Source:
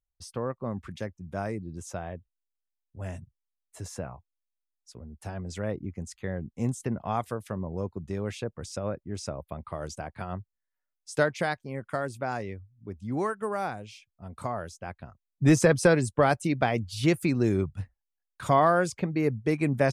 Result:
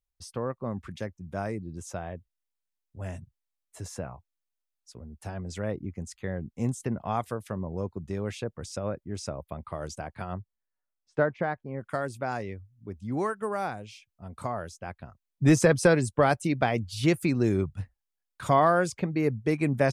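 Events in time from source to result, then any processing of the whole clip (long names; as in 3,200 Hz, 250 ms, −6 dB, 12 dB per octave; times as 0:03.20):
0:10.34–0:11.81: low-pass filter 1,500 Hz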